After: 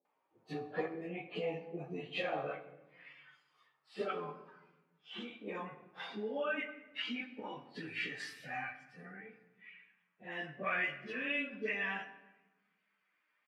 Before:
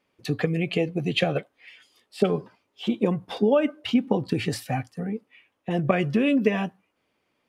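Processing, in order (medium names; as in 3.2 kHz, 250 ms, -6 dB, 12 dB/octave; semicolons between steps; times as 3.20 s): dynamic bell 1.2 kHz, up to -4 dB, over -41 dBFS, Q 0.76; band-pass sweep 830 Hz -> 1.7 kHz, 0.26–3.62 s; plain phase-vocoder stretch 1.8×; bands offset in time lows, highs 50 ms, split 550 Hz; simulated room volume 530 m³, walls mixed, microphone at 0.49 m; trim +4 dB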